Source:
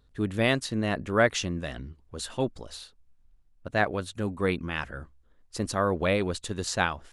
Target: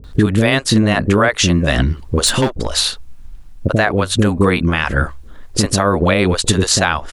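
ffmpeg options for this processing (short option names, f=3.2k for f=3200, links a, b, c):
-filter_complex "[0:a]acompressor=threshold=-36dB:ratio=6,asettb=1/sr,asplit=3[a][b][c];[a]atrim=end=2.224[d];[b]atrim=start=2.22:end=2.63,asetpts=PTS-STARTPTS,afade=t=in:d=0.004:c=qsin,afade=t=out:st=0.406:d=0.004:c=qsin,volume=35.5dB,asoftclip=hard,volume=-35.5dB[e];[c]atrim=start=2.626[f];[d][e]acrossfade=d=0.004:c1=hsin:c2=qsin[g];[g][f]acrossfade=d=0.004:c1=qsin:c2=hsin,acrossover=split=500[h][i];[i]adelay=40[j];[h][j]amix=inputs=2:normalize=0,alimiter=level_in=28dB:limit=-1dB:release=50:level=0:latency=1,volume=-1dB"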